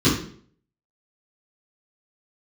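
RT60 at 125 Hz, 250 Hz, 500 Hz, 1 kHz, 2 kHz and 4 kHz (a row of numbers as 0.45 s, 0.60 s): 0.60 s, 0.60 s, 0.60 s, 0.50 s, 0.50 s, 0.45 s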